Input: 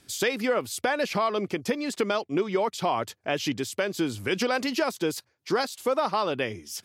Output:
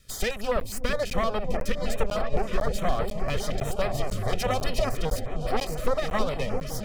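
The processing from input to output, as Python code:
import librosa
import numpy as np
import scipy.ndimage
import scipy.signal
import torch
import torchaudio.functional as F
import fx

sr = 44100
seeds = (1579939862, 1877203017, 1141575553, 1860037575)

p1 = fx.lower_of_two(x, sr, delay_ms=1.6)
p2 = fx.low_shelf(p1, sr, hz=100.0, db=10.5)
p3 = p2 + fx.echo_opening(p2, sr, ms=333, hz=200, octaves=1, feedback_pct=70, wet_db=0, dry=0)
p4 = fx.buffer_crackle(p3, sr, first_s=0.6, period_s=0.5, block=512, kind='zero')
y = fx.filter_held_notch(p4, sr, hz=9.7, low_hz=800.0, high_hz=6400.0)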